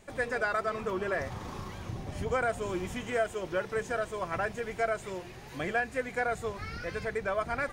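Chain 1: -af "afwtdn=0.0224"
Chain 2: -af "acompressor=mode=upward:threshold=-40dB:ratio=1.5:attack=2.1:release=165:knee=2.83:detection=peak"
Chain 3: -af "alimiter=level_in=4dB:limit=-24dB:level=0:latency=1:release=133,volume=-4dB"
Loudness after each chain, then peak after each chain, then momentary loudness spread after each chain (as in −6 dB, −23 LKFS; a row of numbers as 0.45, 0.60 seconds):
−33.5, −33.0, −38.5 LKFS; −17.0, −17.0, −28.0 dBFS; 11, 10, 4 LU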